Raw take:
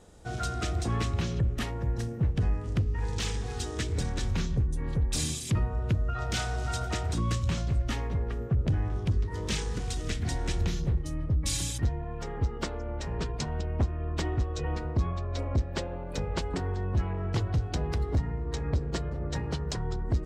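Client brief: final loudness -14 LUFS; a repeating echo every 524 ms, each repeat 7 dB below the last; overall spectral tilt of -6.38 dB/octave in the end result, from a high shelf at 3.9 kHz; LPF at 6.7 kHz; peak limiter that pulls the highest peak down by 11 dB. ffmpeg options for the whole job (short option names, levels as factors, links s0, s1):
-af "lowpass=6700,highshelf=f=3900:g=-7,alimiter=level_in=2.24:limit=0.0631:level=0:latency=1,volume=0.447,aecho=1:1:524|1048|1572|2096|2620:0.447|0.201|0.0905|0.0407|0.0183,volume=15.8"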